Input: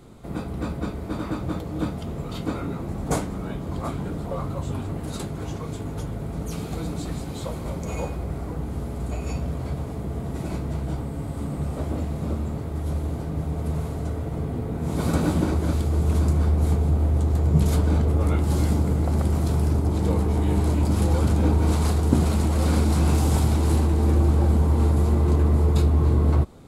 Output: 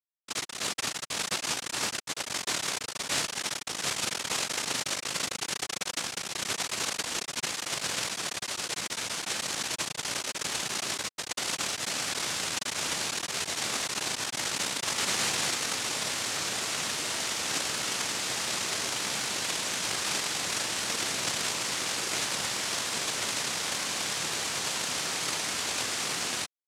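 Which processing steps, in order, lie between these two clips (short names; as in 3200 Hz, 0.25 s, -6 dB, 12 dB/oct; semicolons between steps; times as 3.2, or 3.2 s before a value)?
Schmitt trigger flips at -25.5 dBFS; noise vocoder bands 1; gain -5 dB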